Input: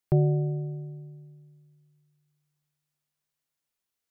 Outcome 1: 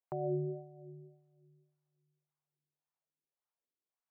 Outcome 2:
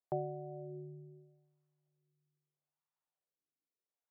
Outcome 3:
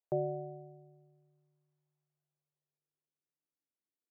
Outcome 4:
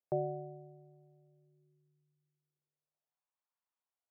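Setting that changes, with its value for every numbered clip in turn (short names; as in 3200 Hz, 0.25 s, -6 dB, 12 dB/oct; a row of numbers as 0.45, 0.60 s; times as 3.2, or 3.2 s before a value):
wah, rate: 1.8, 0.77, 0.2, 0.35 Hz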